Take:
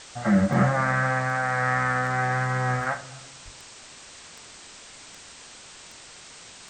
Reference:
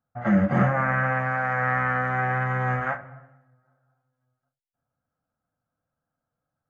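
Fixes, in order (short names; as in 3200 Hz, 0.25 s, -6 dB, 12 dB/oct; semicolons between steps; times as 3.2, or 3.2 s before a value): de-click; de-plosive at 3.44; noise print and reduce 30 dB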